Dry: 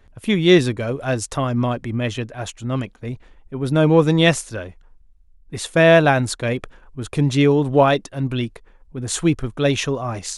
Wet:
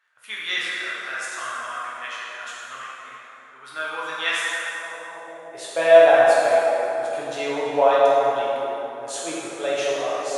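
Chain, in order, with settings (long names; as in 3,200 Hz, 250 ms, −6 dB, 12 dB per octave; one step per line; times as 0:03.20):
dense smooth reverb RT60 3.6 s, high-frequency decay 0.55×, DRR −8 dB
high-pass filter sweep 1,400 Hz → 620 Hz, 0:04.73–0:05.63
level −12 dB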